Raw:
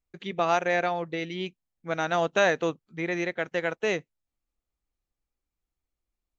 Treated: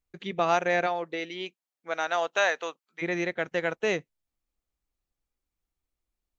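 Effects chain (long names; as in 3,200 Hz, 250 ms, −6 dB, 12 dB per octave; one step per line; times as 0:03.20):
0:00.86–0:03.01: high-pass filter 270 Hz → 920 Hz 12 dB per octave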